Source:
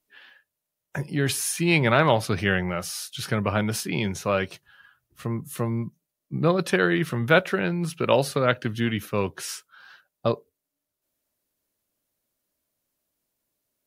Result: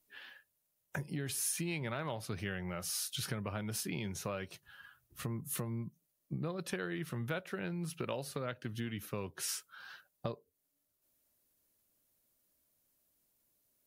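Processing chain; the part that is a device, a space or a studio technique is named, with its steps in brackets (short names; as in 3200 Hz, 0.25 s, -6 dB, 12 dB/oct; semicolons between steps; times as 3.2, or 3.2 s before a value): ASMR close-microphone chain (low shelf 200 Hz +4 dB; compressor 5:1, threshold -35 dBFS, peak gain reduction 20 dB; high shelf 7200 Hz +7.5 dB); gain -2.5 dB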